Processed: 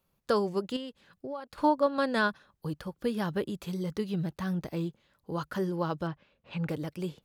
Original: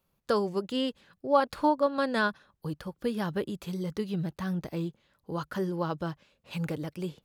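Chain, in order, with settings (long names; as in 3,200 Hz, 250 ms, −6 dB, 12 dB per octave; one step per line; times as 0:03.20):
0:00.76–0:01.58: downward compressor 8 to 1, threshold −36 dBFS, peak gain reduction 18.5 dB
0:06.07–0:06.69: low-pass filter 3,000 Hz 12 dB per octave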